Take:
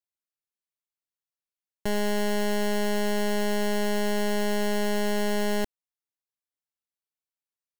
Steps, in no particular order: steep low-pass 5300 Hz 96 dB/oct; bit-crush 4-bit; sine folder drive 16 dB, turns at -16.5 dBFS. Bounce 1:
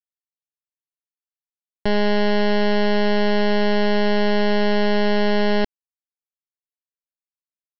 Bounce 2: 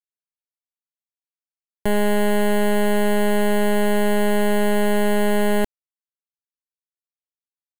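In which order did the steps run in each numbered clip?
sine folder > bit-crush > steep low-pass; sine folder > steep low-pass > bit-crush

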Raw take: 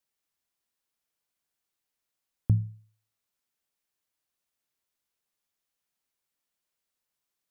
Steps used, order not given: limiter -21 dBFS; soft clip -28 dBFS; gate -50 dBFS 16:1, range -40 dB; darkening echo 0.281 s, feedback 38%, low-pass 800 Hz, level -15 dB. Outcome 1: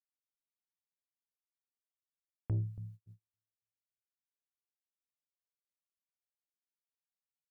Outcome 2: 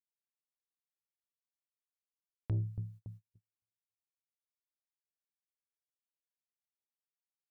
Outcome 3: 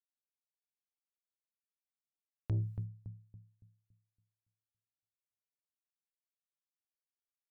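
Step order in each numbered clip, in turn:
limiter > darkening echo > soft clip > gate; darkening echo > limiter > gate > soft clip; gate > darkening echo > limiter > soft clip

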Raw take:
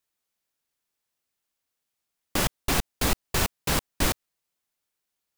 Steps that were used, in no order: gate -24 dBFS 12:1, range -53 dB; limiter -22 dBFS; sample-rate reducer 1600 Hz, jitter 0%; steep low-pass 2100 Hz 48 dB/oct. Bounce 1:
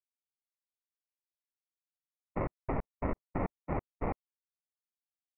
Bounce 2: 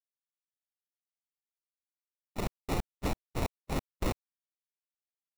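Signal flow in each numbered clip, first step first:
gate > limiter > sample-rate reducer > steep low-pass; steep low-pass > gate > sample-rate reducer > limiter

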